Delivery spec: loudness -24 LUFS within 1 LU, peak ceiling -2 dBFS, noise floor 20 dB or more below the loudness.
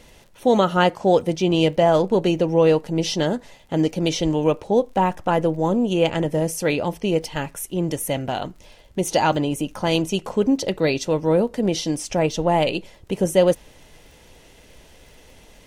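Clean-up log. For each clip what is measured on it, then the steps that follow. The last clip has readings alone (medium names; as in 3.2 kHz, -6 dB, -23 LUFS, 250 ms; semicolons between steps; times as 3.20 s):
tick rate 35 per s; loudness -21.0 LUFS; peak level -4.5 dBFS; loudness target -24.0 LUFS
-> de-click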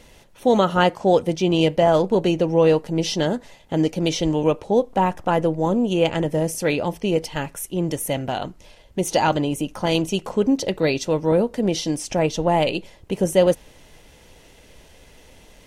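tick rate 0.064 per s; loudness -21.0 LUFS; peak level -4.5 dBFS; loudness target -24.0 LUFS
-> trim -3 dB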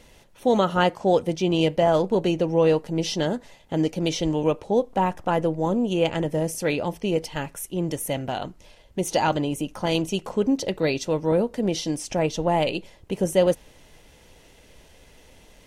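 loudness -24.0 LUFS; peak level -7.5 dBFS; noise floor -53 dBFS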